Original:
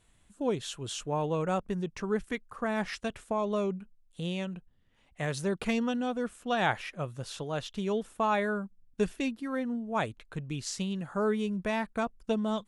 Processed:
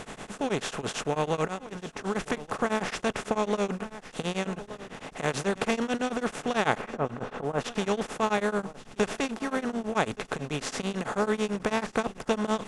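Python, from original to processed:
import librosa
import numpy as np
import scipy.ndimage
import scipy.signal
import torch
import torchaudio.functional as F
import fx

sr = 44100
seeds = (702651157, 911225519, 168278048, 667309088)

p1 = fx.bin_compress(x, sr, power=0.4)
p2 = fx.comb_fb(p1, sr, f0_hz=97.0, decay_s=1.1, harmonics='odd', damping=0.0, mix_pct=60, at=(1.48, 2.04), fade=0.02)
p3 = fx.lowpass(p2, sr, hz=1400.0, slope=12, at=(6.77, 7.58), fade=0.02)
p4 = p3 + fx.echo_single(p3, sr, ms=1171, db=-16.0, dry=0)
y = p4 * np.abs(np.cos(np.pi * 9.1 * np.arange(len(p4)) / sr))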